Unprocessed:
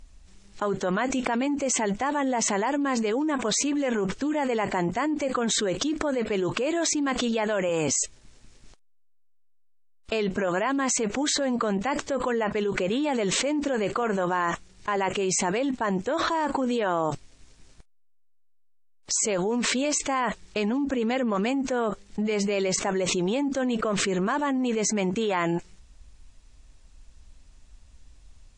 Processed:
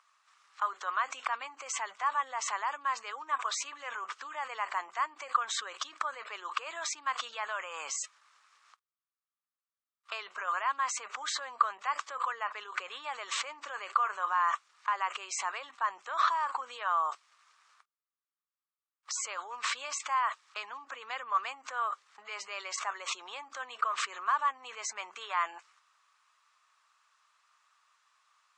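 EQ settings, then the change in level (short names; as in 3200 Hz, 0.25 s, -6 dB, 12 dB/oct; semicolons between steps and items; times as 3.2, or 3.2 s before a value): high shelf 6100 Hz -11.5 dB; dynamic EQ 1400 Hz, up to -6 dB, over -43 dBFS, Q 1; ladder high-pass 1100 Hz, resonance 75%; +8.0 dB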